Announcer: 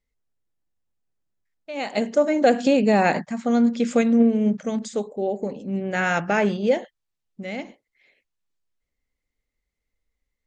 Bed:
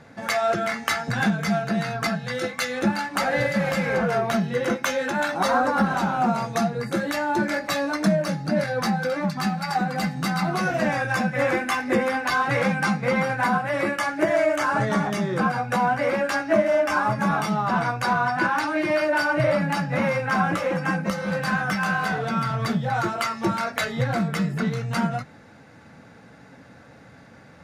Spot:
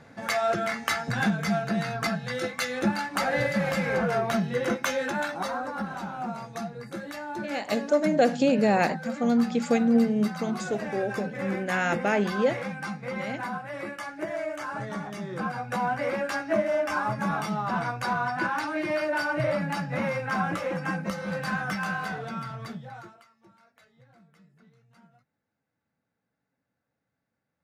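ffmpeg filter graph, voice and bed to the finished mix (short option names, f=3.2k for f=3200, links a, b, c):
-filter_complex "[0:a]adelay=5750,volume=-4dB[a];[1:a]volume=3dB,afade=t=out:st=5.05:d=0.51:silence=0.375837,afade=t=in:st=15.12:d=0.79:silence=0.501187,afade=t=out:st=21.74:d=1.51:silence=0.0354813[b];[a][b]amix=inputs=2:normalize=0"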